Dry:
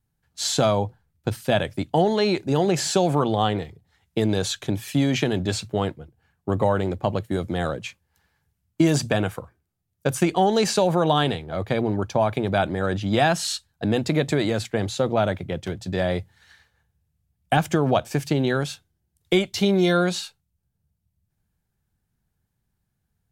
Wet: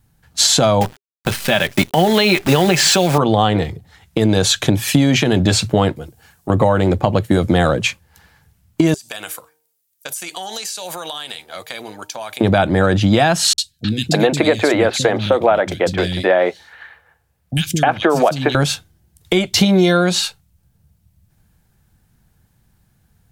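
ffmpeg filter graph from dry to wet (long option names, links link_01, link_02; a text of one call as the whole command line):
ffmpeg -i in.wav -filter_complex "[0:a]asettb=1/sr,asplit=3[link_01][link_02][link_03];[link_01]atrim=end=0.814[link_04];[link_02]atrim=start=0.81:end=3.18,asetpts=PTS-STARTPTS,afade=type=in:duration=0.004:curve=qsin,afade=type=out:start_time=2.366:duration=0.004:curve=qsin,equalizer=frequency=2300:width_type=o:width=1.9:gain=10.5,aecho=1:1:5.1:0.38,atrim=end_sample=104517,acrusher=bits=6:dc=4:mix=0:aa=0.000001[link_05];[link_03]atrim=start=3.176[link_06];[link_04][link_05]acrossfade=duration=0.004:curve1=hsin:curve2=qsin[link_07];[link_07][link_06]acrossfade=duration=0.004:curve1=qsin:curve2=hsin,asettb=1/sr,asplit=3[link_08][link_09][link_10];[link_08]atrim=end=5.964[link_11];[link_09]atrim=start=5.96:end=6.5,asetpts=PTS-STARTPTS,afade=type=in:duration=0.004:curve=qsin,afade=type=out:start_time=0.536:duration=0.004:curve=qsin,bass=frequency=250:gain=-5,treble=frequency=4000:gain=12,acompressor=threshold=-44dB:ratio=2:attack=3.2:release=140:knee=1:detection=peak[link_12];[link_10]atrim=start=6.496[link_13];[link_11][link_12]acrossfade=duration=0.004:curve1=hsin:curve2=qsin[link_14];[link_14][link_13]acrossfade=duration=0.004:curve1=qsin:curve2=hsin,asettb=1/sr,asplit=3[link_15][link_16][link_17];[link_15]atrim=end=8.944[link_18];[link_16]atrim=start=8.94:end=12.41,asetpts=PTS-STARTPTS,afade=type=in:duration=0.004:curve=qsin,afade=type=out:start_time=3.466:duration=0.004:curve=qsin,aderivative,bandreject=frequency=153.9:width_type=h:width=4,bandreject=frequency=307.8:width_type=h:width=4,bandreject=frequency=461.7:width_type=h:width=4,bandreject=frequency=615.6:width_type=h:width=4,bandreject=frequency=769.5:width_type=h:width=4,bandreject=frequency=923.4:width_type=h:width=4,acompressor=threshold=-40dB:ratio=12:attack=3.2:release=140:knee=1:detection=peak[link_19];[link_17]atrim=start=12.406[link_20];[link_18][link_19]acrossfade=duration=0.004:curve1=hsin:curve2=qsin[link_21];[link_21][link_20]acrossfade=duration=0.004:curve1=qsin:curve2=hsin,asettb=1/sr,asplit=3[link_22][link_23][link_24];[link_22]atrim=end=13.534[link_25];[link_23]atrim=start=13.53:end=18.55,asetpts=PTS-STARTPTS,afade=type=in:duration=0.004:curve=qsin,afade=type=out:start_time=5.016:duration=0.004:curve=qsin,bass=frequency=250:gain=-12,treble=frequency=4000:gain=-5,acrossover=split=220|3000[link_26][link_27][link_28];[link_28]adelay=50[link_29];[link_27]adelay=310[link_30];[link_26][link_30][link_29]amix=inputs=3:normalize=0,atrim=end_sample=221382[link_31];[link_24]atrim=start=18.546[link_32];[link_25][link_31]acrossfade=duration=0.004:curve1=hsin:curve2=qsin[link_33];[link_33][link_32]acrossfade=duration=0.004:curve1=qsin:curve2=hsin,bandreject=frequency=400:width=12,acompressor=threshold=-27dB:ratio=6,alimiter=level_in=18dB:limit=-1dB:release=50:level=0:latency=1,volume=-1dB" out.wav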